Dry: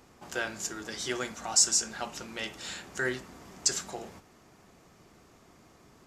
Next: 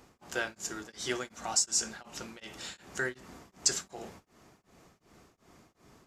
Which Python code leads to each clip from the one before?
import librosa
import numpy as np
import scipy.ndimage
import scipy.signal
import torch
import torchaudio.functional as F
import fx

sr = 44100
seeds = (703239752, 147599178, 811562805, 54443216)

y = x * np.abs(np.cos(np.pi * 2.7 * np.arange(len(x)) / sr))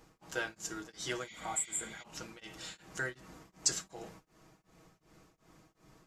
y = x + 0.54 * np.pad(x, (int(6.3 * sr / 1000.0), 0))[:len(x)]
y = fx.spec_repair(y, sr, seeds[0], start_s=1.29, length_s=0.71, low_hz=1900.0, high_hz=7100.0, source='before')
y = fx.low_shelf(y, sr, hz=83.0, db=6.5)
y = y * 10.0 ** (-4.5 / 20.0)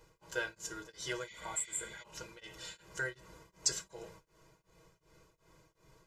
y = x + 0.75 * np.pad(x, (int(2.0 * sr / 1000.0), 0))[:len(x)]
y = y * 10.0 ** (-3.5 / 20.0)